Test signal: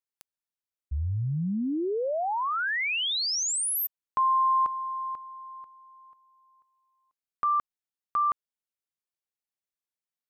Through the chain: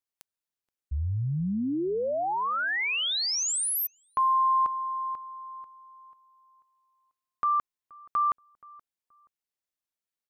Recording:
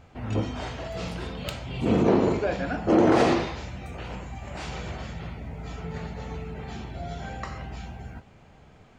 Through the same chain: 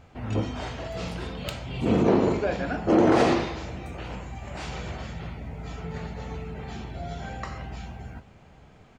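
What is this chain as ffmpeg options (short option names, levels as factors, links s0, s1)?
-filter_complex "[0:a]asplit=2[s0][s1];[s1]adelay=476,lowpass=f=1300:p=1,volume=0.0794,asplit=2[s2][s3];[s3]adelay=476,lowpass=f=1300:p=1,volume=0.32[s4];[s0][s2][s4]amix=inputs=3:normalize=0"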